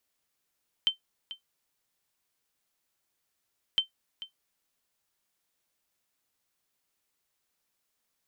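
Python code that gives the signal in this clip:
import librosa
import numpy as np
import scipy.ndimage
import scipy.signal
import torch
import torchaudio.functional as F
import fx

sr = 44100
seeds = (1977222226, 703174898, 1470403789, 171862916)

y = fx.sonar_ping(sr, hz=3100.0, decay_s=0.12, every_s=2.91, pings=2, echo_s=0.44, echo_db=-15.5, level_db=-15.5)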